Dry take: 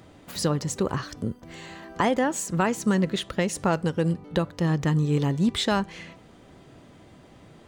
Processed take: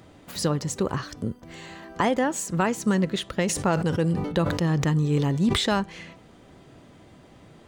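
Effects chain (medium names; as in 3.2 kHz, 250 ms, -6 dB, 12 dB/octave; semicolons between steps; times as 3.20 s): 3.42–5.74 s: decay stretcher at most 48 dB/s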